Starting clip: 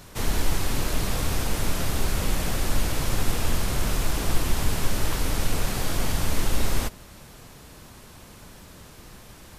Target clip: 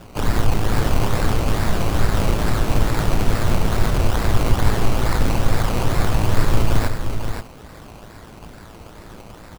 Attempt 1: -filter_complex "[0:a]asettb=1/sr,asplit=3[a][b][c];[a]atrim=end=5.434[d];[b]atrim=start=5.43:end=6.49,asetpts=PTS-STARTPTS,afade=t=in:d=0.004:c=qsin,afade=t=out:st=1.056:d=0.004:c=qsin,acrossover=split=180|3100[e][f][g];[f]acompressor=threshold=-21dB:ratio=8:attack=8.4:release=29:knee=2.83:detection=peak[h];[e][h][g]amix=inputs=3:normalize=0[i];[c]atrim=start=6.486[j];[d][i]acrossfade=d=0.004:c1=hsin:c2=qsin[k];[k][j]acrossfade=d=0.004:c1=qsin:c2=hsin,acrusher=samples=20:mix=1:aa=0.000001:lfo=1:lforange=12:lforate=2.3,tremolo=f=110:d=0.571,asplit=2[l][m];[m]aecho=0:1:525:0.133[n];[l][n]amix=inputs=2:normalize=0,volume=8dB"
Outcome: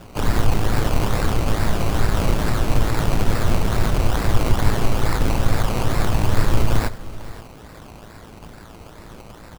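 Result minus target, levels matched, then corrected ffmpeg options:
echo-to-direct -10.5 dB
-filter_complex "[0:a]asettb=1/sr,asplit=3[a][b][c];[a]atrim=end=5.434[d];[b]atrim=start=5.43:end=6.49,asetpts=PTS-STARTPTS,afade=t=in:d=0.004:c=qsin,afade=t=out:st=1.056:d=0.004:c=qsin,acrossover=split=180|3100[e][f][g];[f]acompressor=threshold=-21dB:ratio=8:attack=8.4:release=29:knee=2.83:detection=peak[h];[e][h][g]amix=inputs=3:normalize=0[i];[c]atrim=start=6.486[j];[d][i]acrossfade=d=0.004:c1=hsin:c2=qsin[k];[k][j]acrossfade=d=0.004:c1=qsin:c2=hsin,acrusher=samples=20:mix=1:aa=0.000001:lfo=1:lforange=12:lforate=2.3,tremolo=f=110:d=0.571,asplit=2[l][m];[m]aecho=0:1:525:0.447[n];[l][n]amix=inputs=2:normalize=0,volume=8dB"

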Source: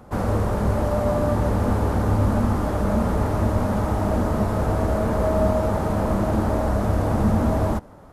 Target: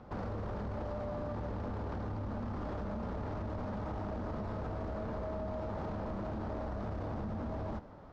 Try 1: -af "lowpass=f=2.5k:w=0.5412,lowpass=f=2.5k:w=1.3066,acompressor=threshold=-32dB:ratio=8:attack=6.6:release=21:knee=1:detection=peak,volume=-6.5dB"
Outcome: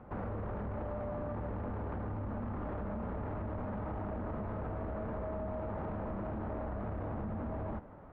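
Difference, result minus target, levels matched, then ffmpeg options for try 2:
4000 Hz band -10.5 dB
-af "lowpass=f=5.1k:w=0.5412,lowpass=f=5.1k:w=1.3066,acompressor=threshold=-32dB:ratio=8:attack=6.6:release=21:knee=1:detection=peak,volume=-6.5dB"

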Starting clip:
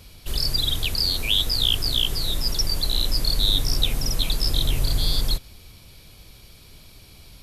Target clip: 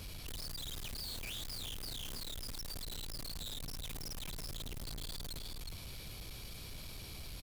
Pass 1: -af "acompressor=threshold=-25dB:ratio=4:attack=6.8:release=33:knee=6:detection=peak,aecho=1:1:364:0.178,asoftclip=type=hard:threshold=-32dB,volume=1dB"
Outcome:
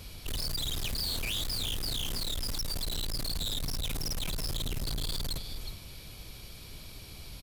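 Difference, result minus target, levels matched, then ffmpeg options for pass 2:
hard clip: distortion -4 dB
-af "acompressor=threshold=-25dB:ratio=4:attack=6.8:release=33:knee=6:detection=peak,aecho=1:1:364:0.178,asoftclip=type=hard:threshold=-43dB,volume=1dB"

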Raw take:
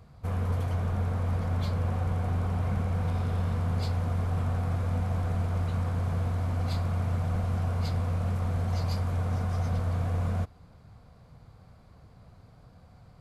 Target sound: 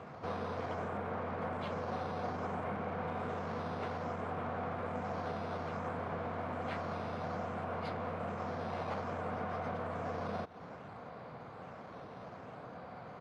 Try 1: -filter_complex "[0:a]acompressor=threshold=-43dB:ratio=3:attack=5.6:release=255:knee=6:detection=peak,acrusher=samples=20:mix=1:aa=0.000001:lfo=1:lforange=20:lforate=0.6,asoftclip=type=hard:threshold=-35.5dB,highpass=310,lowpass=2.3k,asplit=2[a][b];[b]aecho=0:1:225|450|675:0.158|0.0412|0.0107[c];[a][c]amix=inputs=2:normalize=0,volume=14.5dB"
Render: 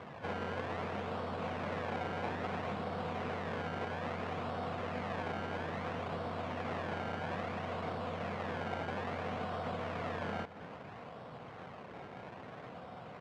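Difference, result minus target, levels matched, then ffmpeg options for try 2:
decimation with a swept rate: distortion +8 dB; echo-to-direct +7 dB
-filter_complex "[0:a]acompressor=threshold=-43dB:ratio=3:attack=5.6:release=255:knee=6:detection=peak,acrusher=samples=6:mix=1:aa=0.000001:lfo=1:lforange=6:lforate=0.6,asoftclip=type=hard:threshold=-35.5dB,highpass=310,lowpass=2.3k,asplit=2[a][b];[b]aecho=0:1:225|450:0.0708|0.0184[c];[a][c]amix=inputs=2:normalize=0,volume=14.5dB"

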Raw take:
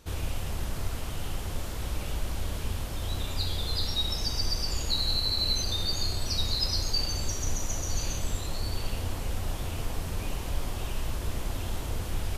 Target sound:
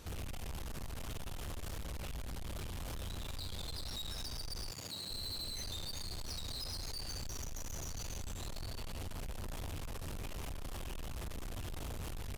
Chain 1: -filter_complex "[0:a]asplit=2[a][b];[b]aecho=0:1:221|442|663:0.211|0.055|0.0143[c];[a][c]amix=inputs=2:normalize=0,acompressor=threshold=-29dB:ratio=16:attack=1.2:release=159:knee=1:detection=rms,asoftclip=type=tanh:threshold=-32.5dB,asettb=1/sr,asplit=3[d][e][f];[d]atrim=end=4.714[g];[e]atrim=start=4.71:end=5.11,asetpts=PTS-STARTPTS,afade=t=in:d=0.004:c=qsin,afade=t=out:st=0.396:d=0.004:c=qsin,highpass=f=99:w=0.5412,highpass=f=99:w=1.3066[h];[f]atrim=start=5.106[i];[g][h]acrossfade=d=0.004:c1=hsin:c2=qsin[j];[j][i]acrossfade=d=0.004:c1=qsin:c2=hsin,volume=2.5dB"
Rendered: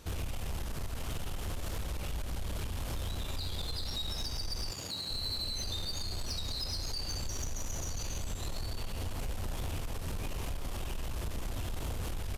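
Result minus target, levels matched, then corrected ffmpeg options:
soft clip: distortion -8 dB
-filter_complex "[0:a]asplit=2[a][b];[b]aecho=0:1:221|442|663:0.211|0.055|0.0143[c];[a][c]amix=inputs=2:normalize=0,acompressor=threshold=-29dB:ratio=16:attack=1.2:release=159:knee=1:detection=rms,asoftclip=type=tanh:threshold=-42dB,asettb=1/sr,asplit=3[d][e][f];[d]atrim=end=4.714[g];[e]atrim=start=4.71:end=5.11,asetpts=PTS-STARTPTS,afade=t=in:d=0.004:c=qsin,afade=t=out:st=0.396:d=0.004:c=qsin,highpass=f=99:w=0.5412,highpass=f=99:w=1.3066[h];[f]atrim=start=5.106[i];[g][h]acrossfade=d=0.004:c1=hsin:c2=qsin[j];[j][i]acrossfade=d=0.004:c1=qsin:c2=hsin,volume=2.5dB"

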